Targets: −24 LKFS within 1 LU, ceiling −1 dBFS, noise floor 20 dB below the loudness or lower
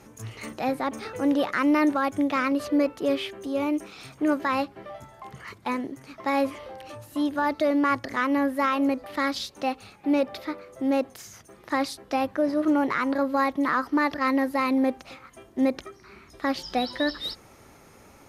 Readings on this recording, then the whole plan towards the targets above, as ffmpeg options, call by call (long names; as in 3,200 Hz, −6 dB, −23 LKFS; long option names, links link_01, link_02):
integrated loudness −26.0 LKFS; sample peak −13.0 dBFS; target loudness −24.0 LKFS
→ -af "volume=2dB"